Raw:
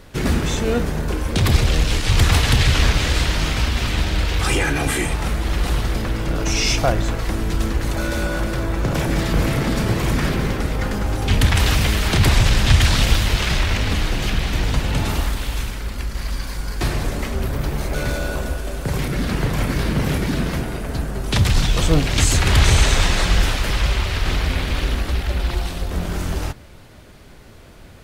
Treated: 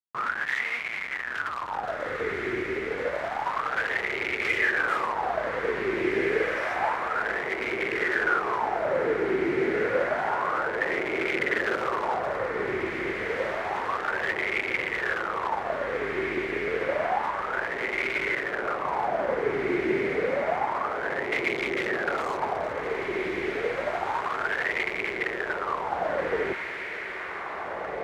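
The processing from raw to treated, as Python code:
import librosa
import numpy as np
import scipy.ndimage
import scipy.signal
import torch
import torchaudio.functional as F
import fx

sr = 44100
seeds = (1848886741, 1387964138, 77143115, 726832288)

p1 = fx.schmitt(x, sr, flips_db=-32.0)
p2 = fx.wow_flutter(p1, sr, seeds[0], rate_hz=2.1, depth_cents=61.0)
p3 = fx.wah_lfo(p2, sr, hz=0.29, low_hz=370.0, high_hz=2200.0, q=11.0)
p4 = p3 + fx.echo_diffused(p3, sr, ms=1881, feedback_pct=42, wet_db=-4.5, dry=0)
y = F.gain(torch.from_numpy(p4), 8.0).numpy()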